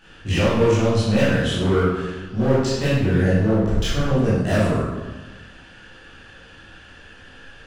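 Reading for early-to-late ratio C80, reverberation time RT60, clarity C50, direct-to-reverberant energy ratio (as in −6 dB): 1.5 dB, 1.2 s, −2.0 dB, −11.0 dB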